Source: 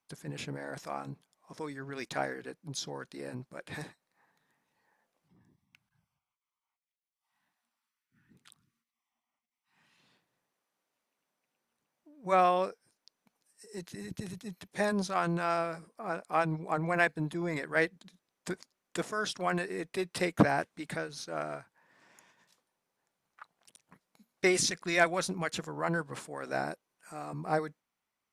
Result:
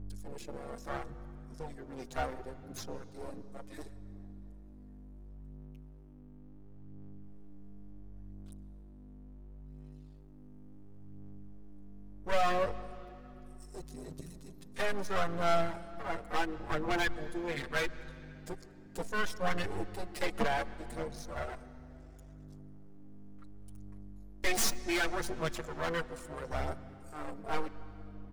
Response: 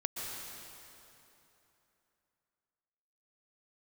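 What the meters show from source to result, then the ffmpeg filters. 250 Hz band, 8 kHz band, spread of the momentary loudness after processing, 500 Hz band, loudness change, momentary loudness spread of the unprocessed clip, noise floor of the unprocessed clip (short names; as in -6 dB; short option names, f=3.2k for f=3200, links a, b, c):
-5.5 dB, -2.5 dB, 23 LU, -3.5 dB, -3.5 dB, 16 LU, under -85 dBFS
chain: -filter_complex "[0:a]afwtdn=0.0158,bass=f=250:g=-14,treble=f=4k:g=13,asplit=2[a][b];[b]alimiter=limit=-18dB:level=0:latency=1:release=286,volume=0dB[c];[a][c]amix=inputs=2:normalize=0,aeval=exprs='val(0)+0.00891*(sin(2*PI*50*n/s)+sin(2*PI*2*50*n/s)/2+sin(2*PI*3*50*n/s)/3+sin(2*PI*4*50*n/s)/4+sin(2*PI*5*50*n/s)/5)':c=same,aeval=exprs='max(val(0),0)':c=same,aphaser=in_gain=1:out_gain=1:delay=4.4:decay=0.34:speed=0.71:type=sinusoidal,volume=18.5dB,asoftclip=hard,volume=-18.5dB,asplit=2[d][e];[1:a]atrim=start_sample=2205,lowpass=6.1k,lowshelf=f=350:g=9[f];[e][f]afir=irnorm=-1:irlink=0,volume=-17dB[g];[d][g]amix=inputs=2:normalize=0,asplit=2[h][i];[i]adelay=6.8,afreqshift=0.25[j];[h][j]amix=inputs=2:normalize=1"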